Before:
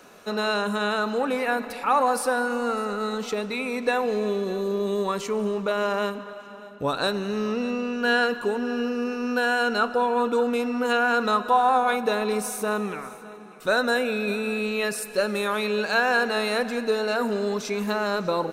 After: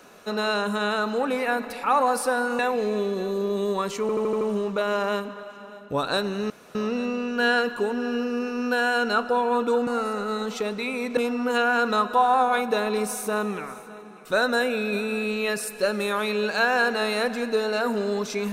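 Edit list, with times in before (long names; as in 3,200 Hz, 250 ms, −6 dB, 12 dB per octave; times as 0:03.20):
0:02.59–0:03.89: move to 0:10.52
0:05.31: stutter 0.08 s, 6 plays
0:07.40: splice in room tone 0.25 s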